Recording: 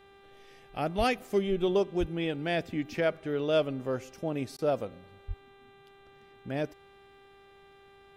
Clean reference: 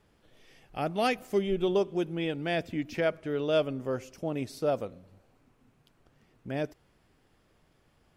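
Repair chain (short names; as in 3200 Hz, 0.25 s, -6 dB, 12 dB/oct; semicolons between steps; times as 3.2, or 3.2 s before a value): de-hum 395.5 Hz, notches 10; 0.97–1.09 HPF 140 Hz 24 dB/oct; 1.99–2.11 HPF 140 Hz 24 dB/oct; 5.27–5.39 HPF 140 Hz 24 dB/oct; interpolate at 4.57, 15 ms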